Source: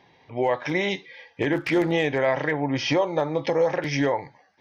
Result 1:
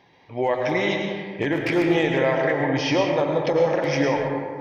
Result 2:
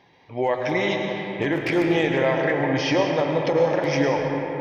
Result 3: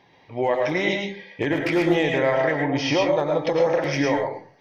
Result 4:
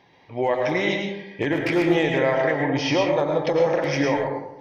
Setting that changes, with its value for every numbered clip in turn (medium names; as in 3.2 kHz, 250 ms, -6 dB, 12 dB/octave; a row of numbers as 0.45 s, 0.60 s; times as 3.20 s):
algorithmic reverb, RT60: 2 s, 4.4 s, 0.41 s, 0.91 s